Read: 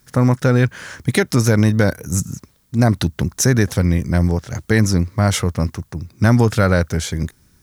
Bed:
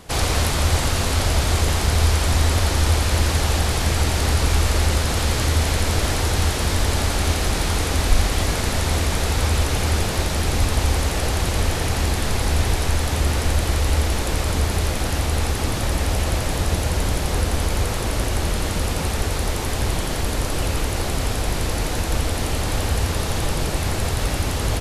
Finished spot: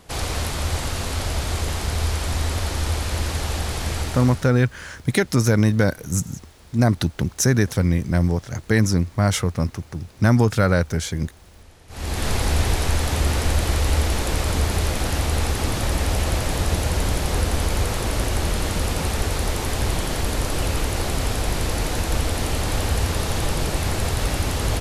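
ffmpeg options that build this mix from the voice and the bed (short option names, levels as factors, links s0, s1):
-filter_complex "[0:a]adelay=4000,volume=0.708[s0];[1:a]volume=11.9,afade=t=out:st=3.97:d=0.55:silence=0.0794328,afade=t=in:st=11.88:d=0.4:silence=0.0446684[s1];[s0][s1]amix=inputs=2:normalize=0"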